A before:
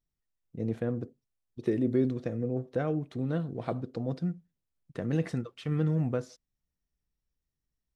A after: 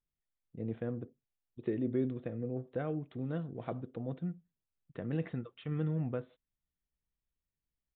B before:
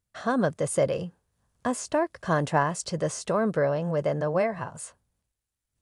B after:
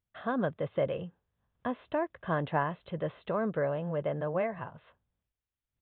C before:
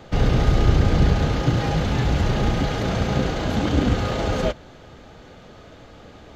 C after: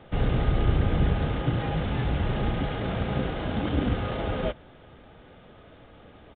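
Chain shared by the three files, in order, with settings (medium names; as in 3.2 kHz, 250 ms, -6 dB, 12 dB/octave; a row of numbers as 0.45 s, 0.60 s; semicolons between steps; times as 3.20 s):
resampled via 8 kHz; trim -6 dB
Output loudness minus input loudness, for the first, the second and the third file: -6.0 LU, -6.0 LU, -6.0 LU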